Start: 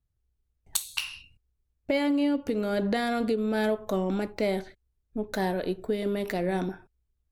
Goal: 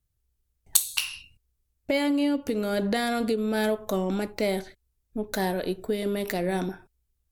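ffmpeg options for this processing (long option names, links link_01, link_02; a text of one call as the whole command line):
ffmpeg -i in.wav -af "aemphasis=mode=production:type=cd,volume=1dB" out.wav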